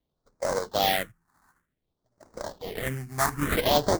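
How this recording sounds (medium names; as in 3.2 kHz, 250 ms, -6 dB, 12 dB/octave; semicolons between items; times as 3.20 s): aliases and images of a low sample rate 2.6 kHz, jitter 20%; phasing stages 4, 0.55 Hz, lowest notch 500–3100 Hz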